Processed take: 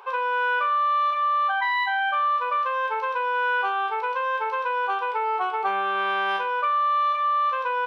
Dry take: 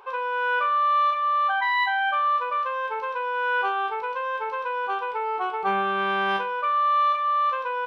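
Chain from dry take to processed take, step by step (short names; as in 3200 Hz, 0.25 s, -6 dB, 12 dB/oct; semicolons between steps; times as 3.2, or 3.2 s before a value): HPF 440 Hz 12 dB/oct; compressor, threshold -24 dBFS, peak gain reduction 5.5 dB; gain +3.5 dB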